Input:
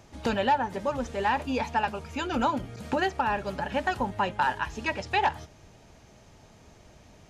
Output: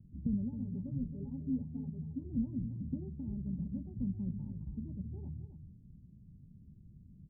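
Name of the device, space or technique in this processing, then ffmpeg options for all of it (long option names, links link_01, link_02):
the neighbour's flat through the wall: -filter_complex "[0:a]asettb=1/sr,asplit=3[link_01][link_02][link_03];[link_01]atrim=end=0.604[link_04];[link_02]atrim=start=0.6:end=2.25,asetpts=PTS-STARTPTS,afade=type=in:duration=0.004:curve=qsin,afade=type=out:start_time=1.646:duration=0.004:curve=qsin,aecho=1:1:7.2:0.68,atrim=end_sample=72765[link_05];[link_03]atrim=start=2.246[link_06];[link_04][link_05]acrossfade=duration=0.004:curve1=hsin:curve2=qsin[link_07];[link_07][link_06]acrossfade=duration=0.004:curve1=qsin:curve2=hsin,lowpass=frequency=220:width=0.5412,lowpass=frequency=220:width=1.3066,equalizer=frequency=170:width_type=o:width=0.93:gain=6.5,asplit=2[link_08][link_09];[link_09]adelay=268.2,volume=-10dB,highshelf=frequency=4000:gain=-6.04[link_10];[link_08][link_10]amix=inputs=2:normalize=0,volume=-2.5dB"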